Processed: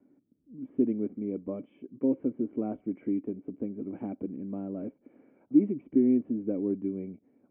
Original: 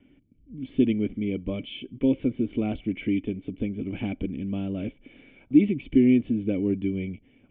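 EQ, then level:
high-pass filter 240 Hz 12 dB per octave
low-pass filter 1,300 Hz 24 dB per octave
high-frequency loss of the air 170 metres
−2.0 dB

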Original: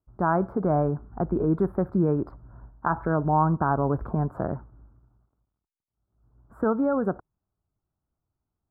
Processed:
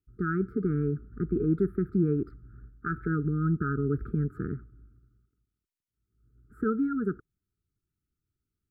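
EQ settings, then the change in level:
linear-phase brick-wall band-stop 460–1,200 Hz
−2.0 dB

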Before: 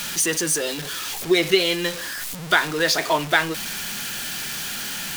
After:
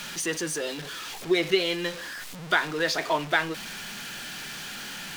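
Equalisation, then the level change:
parametric band 60 Hz −5 dB 1.7 octaves
high-shelf EQ 6,900 Hz −11.5 dB
−4.5 dB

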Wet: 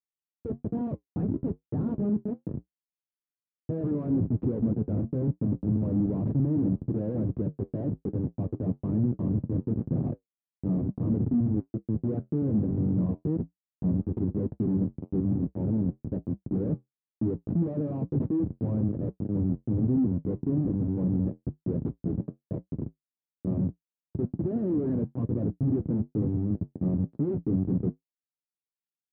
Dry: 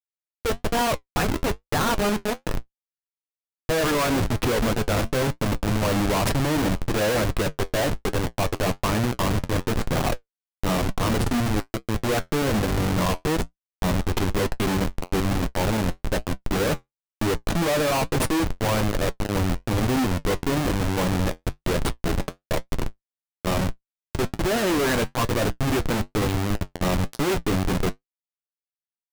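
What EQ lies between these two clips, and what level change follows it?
flat-topped band-pass 180 Hz, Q 0.83
0.0 dB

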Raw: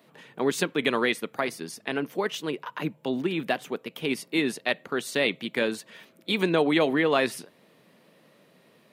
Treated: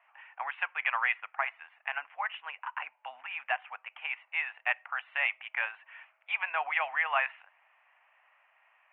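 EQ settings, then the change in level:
elliptic high-pass filter 770 Hz, stop band 50 dB
Butterworth low-pass 2,800 Hz 72 dB per octave
0.0 dB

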